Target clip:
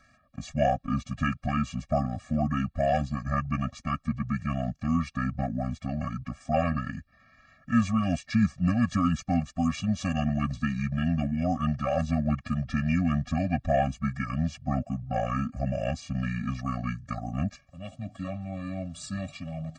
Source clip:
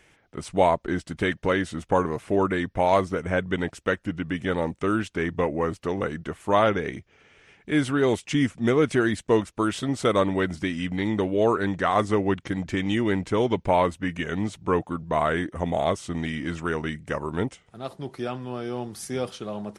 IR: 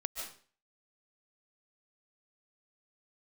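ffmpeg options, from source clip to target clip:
-af "asetrate=34006,aresample=44100,atempo=1.29684,afftfilt=real='re*eq(mod(floor(b*sr/1024/270),2),0)':imag='im*eq(mod(floor(b*sr/1024/270),2),0)':win_size=1024:overlap=0.75"

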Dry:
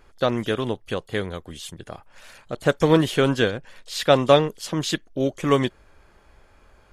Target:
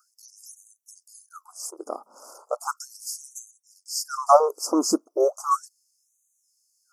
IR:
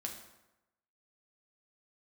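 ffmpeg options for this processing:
-af "asuperstop=centerf=2600:order=20:qfactor=0.72,afftfilt=real='re*gte(b*sr/1024,210*pow(6100/210,0.5+0.5*sin(2*PI*0.36*pts/sr)))':imag='im*gte(b*sr/1024,210*pow(6100/210,0.5+0.5*sin(2*PI*0.36*pts/sr)))':win_size=1024:overlap=0.75,volume=6dB"

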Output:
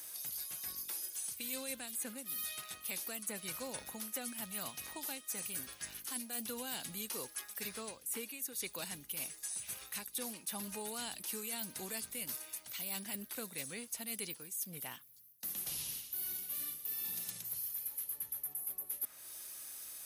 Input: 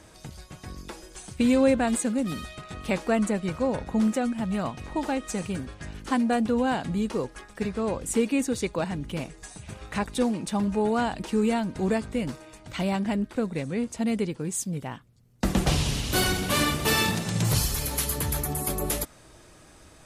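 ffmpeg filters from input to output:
-filter_complex "[0:a]aderivative,acrossover=split=420|2700[a][b][c];[a]acompressor=threshold=-54dB:ratio=4[d];[b]acompressor=threshold=-53dB:ratio=4[e];[c]acompressor=threshold=-41dB:ratio=4[f];[d][e][f]amix=inputs=3:normalize=0,aexciter=amount=5:drive=7.6:freq=11k,areverse,acompressor=threshold=-44dB:ratio=16,areverse,lowshelf=f=210:g=8.5,bandreject=f=7.3k:w=15,volume=7dB"

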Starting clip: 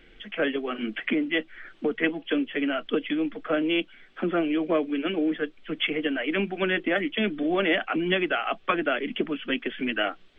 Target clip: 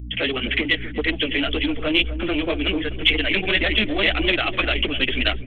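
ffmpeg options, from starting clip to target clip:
-filter_complex "[0:a]agate=range=-49dB:threshold=-44dB:ratio=16:detection=peak,aeval=exprs='val(0)+0.0158*(sin(2*PI*60*n/s)+sin(2*PI*2*60*n/s)/2+sin(2*PI*3*60*n/s)/3+sin(2*PI*4*60*n/s)/4+sin(2*PI*5*60*n/s)/5)':c=same,acontrast=90,flanger=delay=19:depth=7.8:speed=1,asubboost=boost=3.5:cutoff=69,aresample=8000,asoftclip=type=tanh:threshold=-16.5dB,aresample=44100,atempo=1.9,aexciter=amount=4.9:drive=3.2:freq=2.1k,asplit=2[a][b];[b]adelay=249,lowpass=f=820:p=1,volume=-11dB,asplit=2[c][d];[d]adelay=249,lowpass=f=820:p=1,volume=0.48,asplit=2[e][f];[f]adelay=249,lowpass=f=820:p=1,volume=0.48,asplit=2[g][h];[h]adelay=249,lowpass=f=820:p=1,volume=0.48,asplit=2[i][j];[j]adelay=249,lowpass=f=820:p=1,volume=0.48[k];[c][e][g][i][k]amix=inputs=5:normalize=0[l];[a][l]amix=inputs=2:normalize=0"

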